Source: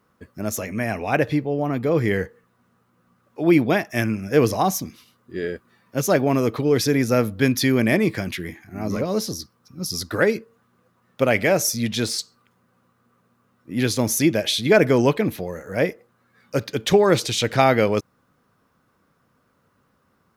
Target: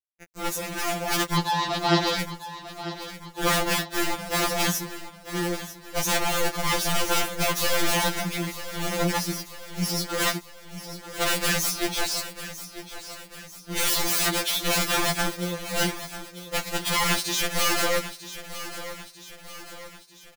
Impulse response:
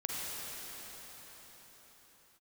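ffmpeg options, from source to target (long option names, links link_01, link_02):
-filter_complex "[0:a]asettb=1/sr,asplit=3[link_01][link_02][link_03];[link_01]atrim=end=13.754[link_04];[link_02]atrim=start=13.75:end=14.43,asetpts=PTS-STARTPTS,afade=type=in:duration=0.004:curve=qsin,afade=type=out:start_time=0.676:duration=0.004:curve=qsin,equalizer=frequency=4000:width_type=o:width=1.4:gain=15[link_05];[link_03]atrim=start=14.426[link_06];[link_04][link_05]acrossfade=duration=0.004:curve1=hsin:curve2=qsin[link_07];[link_07][link_06]acrossfade=duration=0.004:curve1=qsin:curve2=hsin,aeval=exprs='(mod(6.31*val(0)+1,2)-1)/6.31':channel_layout=same,acrusher=bits=4:mix=0:aa=0.000001,asettb=1/sr,asplit=3[link_08][link_09][link_10];[link_08]atrim=end=1.364[link_11];[link_09]atrim=start=1.36:end=2.19,asetpts=PTS-STARTPTS,afade=type=in:duration=0.004:curve=qsin,afade=type=out:start_time=0.826:duration=0.004:curve=qsin,highpass=170,equalizer=frequency=170:width_type=q:width=4:gain=8,equalizer=frequency=290:width_type=q:width=4:gain=9,equalizer=frequency=930:width_type=q:width=4:gain=5,equalizer=frequency=2200:width_type=q:width=4:gain=-6,equalizer=frequency=4000:width_type=q:width=4:gain=8,lowpass=frequency=5900:width=0.5412,lowpass=frequency=5900:width=1.3066[link_12];[link_10]atrim=start=2.186[link_13];[link_11][link_12]acrossfade=duration=0.004:curve1=hsin:curve2=qsin[link_14];[link_14][link_13]acrossfade=duration=0.004:curve1=qsin:curve2=hsin,asplit=2[link_15][link_16];[link_16]aecho=0:1:944|1888|2832|3776|4720:0.224|0.116|0.0605|0.0315|0.0164[link_17];[link_15][link_17]amix=inputs=2:normalize=0,afftfilt=real='re*2.83*eq(mod(b,8),0)':imag='im*2.83*eq(mod(b,8),0)':win_size=2048:overlap=0.75"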